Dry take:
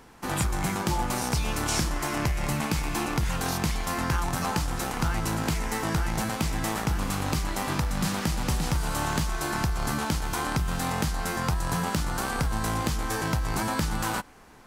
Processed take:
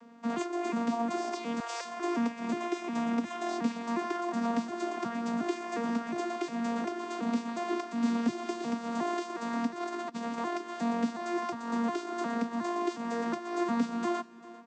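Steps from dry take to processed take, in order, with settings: arpeggiated vocoder bare fifth, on A#3, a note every 0.36 s; 1.6–2 steep high-pass 510 Hz 48 dB/oct; 2.61–3.51 notch 4500 Hz, Q 16; 9.81–10.38 negative-ratio compressor -34 dBFS, ratio -0.5; echo 0.397 s -19 dB; gain -2 dB

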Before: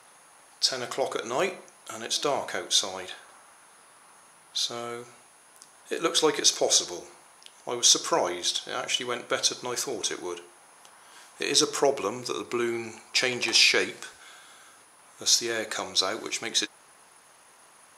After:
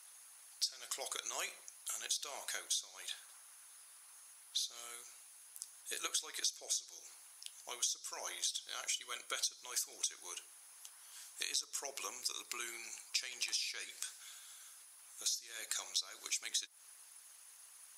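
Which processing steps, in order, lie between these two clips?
differentiator; 8.87–9.34 notch comb 860 Hz; compressor 16:1, threshold -38 dBFS, peak gain reduction 21.5 dB; harmonic-percussive split harmonic -7 dB; gain +4 dB

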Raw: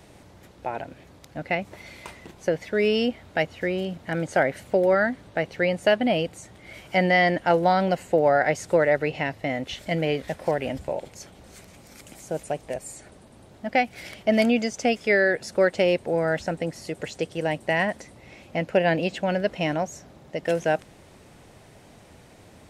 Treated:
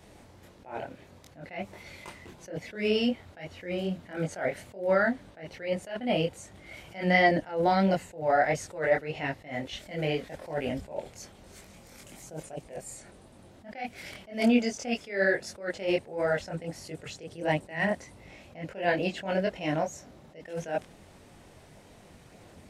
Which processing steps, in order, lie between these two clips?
chorus voices 4, 1.5 Hz, delay 23 ms, depth 3 ms; attack slew limiter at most 150 dB/s

